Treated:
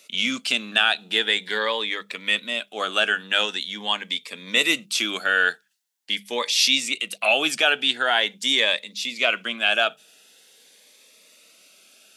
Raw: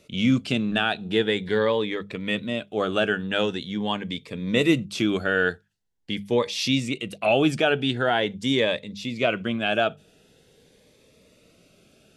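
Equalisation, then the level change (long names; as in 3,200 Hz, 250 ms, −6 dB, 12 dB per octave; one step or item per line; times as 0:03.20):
high-pass filter 240 Hz 24 dB per octave
spectral tilt +2.5 dB per octave
parametric band 370 Hz −10 dB 1.5 octaves
+4.0 dB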